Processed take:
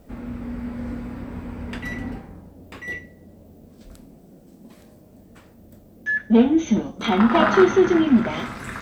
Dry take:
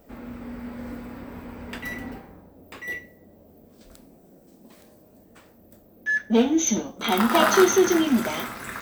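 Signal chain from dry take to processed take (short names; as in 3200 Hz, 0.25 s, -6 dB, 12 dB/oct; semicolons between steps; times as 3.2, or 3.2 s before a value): treble ducked by the level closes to 2800 Hz, closed at -20 dBFS; tone controls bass +8 dB, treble -2 dB; requantised 12-bit, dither triangular; gain +1 dB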